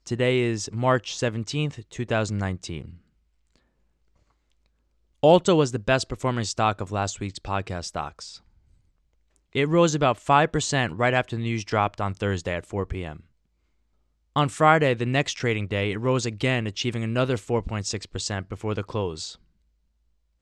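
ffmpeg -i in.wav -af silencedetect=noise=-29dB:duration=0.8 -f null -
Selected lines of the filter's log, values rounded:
silence_start: 2.79
silence_end: 5.23 | silence_duration: 2.44
silence_start: 8.23
silence_end: 9.55 | silence_duration: 1.33
silence_start: 13.12
silence_end: 14.36 | silence_duration: 1.24
silence_start: 19.31
silence_end: 20.41 | silence_duration: 1.10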